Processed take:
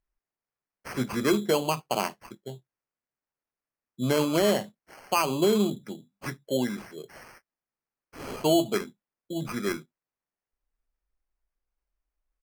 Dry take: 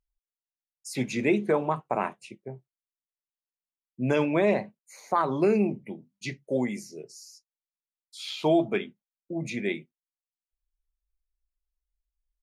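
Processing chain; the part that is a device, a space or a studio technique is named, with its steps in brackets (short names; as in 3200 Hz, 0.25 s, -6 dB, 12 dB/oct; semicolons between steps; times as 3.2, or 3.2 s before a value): crushed at another speed (playback speed 0.8×; sample-and-hold 15×; playback speed 1.25×)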